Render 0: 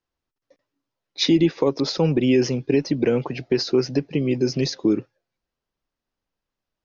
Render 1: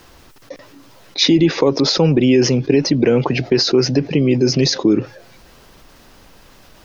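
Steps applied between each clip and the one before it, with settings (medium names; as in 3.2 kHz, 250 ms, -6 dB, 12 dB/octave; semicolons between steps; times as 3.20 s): level flattener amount 50%; trim +3.5 dB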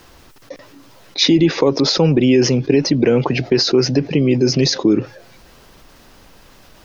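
no audible change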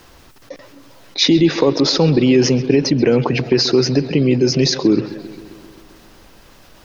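bucket-brigade echo 132 ms, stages 4096, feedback 69%, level -16.5 dB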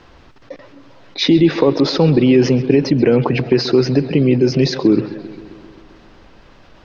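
distance through air 180 m; trim +1.5 dB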